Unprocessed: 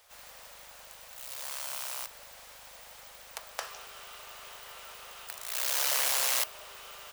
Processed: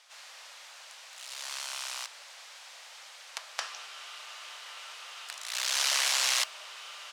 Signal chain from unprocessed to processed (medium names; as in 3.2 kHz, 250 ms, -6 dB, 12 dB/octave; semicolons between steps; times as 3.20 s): band-pass 740–5700 Hz; treble shelf 2.2 kHz +8.5 dB